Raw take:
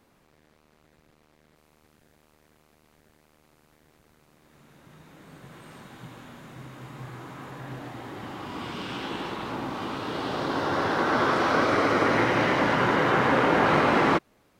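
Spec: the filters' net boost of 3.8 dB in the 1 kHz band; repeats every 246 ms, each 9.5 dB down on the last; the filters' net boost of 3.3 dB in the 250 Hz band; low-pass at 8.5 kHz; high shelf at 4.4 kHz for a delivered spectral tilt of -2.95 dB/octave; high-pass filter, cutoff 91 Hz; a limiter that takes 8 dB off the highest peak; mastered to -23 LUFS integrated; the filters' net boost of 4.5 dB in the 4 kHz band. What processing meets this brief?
high-pass 91 Hz; low-pass 8.5 kHz; peaking EQ 250 Hz +4 dB; peaking EQ 1 kHz +4 dB; peaking EQ 4 kHz +3.5 dB; treble shelf 4.4 kHz +4.5 dB; peak limiter -13.5 dBFS; feedback delay 246 ms, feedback 33%, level -9.5 dB; trim +1 dB

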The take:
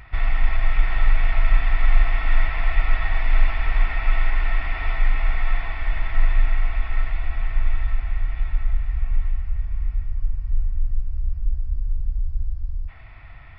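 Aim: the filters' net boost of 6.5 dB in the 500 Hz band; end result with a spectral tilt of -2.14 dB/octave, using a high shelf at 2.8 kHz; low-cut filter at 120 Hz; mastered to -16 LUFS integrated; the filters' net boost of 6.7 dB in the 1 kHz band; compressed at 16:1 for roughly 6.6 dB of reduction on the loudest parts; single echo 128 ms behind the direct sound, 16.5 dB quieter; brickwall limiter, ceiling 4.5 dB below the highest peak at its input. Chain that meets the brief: high-pass 120 Hz; peaking EQ 500 Hz +6 dB; peaking EQ 1 kHz +6.5 dB; treble shelf 2.8 kHz +4.5 dB; compression 16:1, threshold -30 dBFS; peak limiter -26.5 dBFS; delay 128 ms -16.5 dB; trim +20.5 dB

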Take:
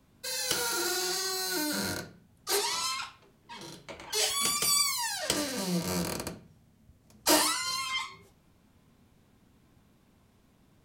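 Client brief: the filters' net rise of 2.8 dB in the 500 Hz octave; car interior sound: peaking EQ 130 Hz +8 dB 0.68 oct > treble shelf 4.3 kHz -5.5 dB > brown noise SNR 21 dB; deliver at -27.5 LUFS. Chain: peaking EQ 130 Hz +8 dB 0.68 oct; peaking EQ 500 Hz +3.5 dB; treble shelf 4.3 kHz -5.5 dB; brown noise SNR 21 dB; trim +3 dB

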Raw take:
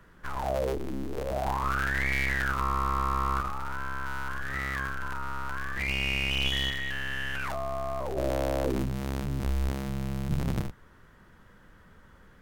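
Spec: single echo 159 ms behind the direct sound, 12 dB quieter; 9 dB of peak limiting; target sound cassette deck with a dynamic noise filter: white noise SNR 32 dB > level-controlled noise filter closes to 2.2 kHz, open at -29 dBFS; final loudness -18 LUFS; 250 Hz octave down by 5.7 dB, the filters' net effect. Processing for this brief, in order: peaking EQ 250 Hz -8.5 dB; peak limiter -24 dBFS; delay 159 ms -12 dB; white noise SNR 32 dB; level-controlled noise filter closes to 2.2 kHz, open at -29 dBFS; trim +16 dB

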